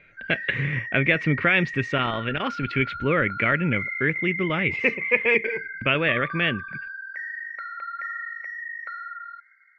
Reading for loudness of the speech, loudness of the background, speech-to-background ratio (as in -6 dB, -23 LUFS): -23.5 LUFS, -32.0 LUFS, 8.5 dB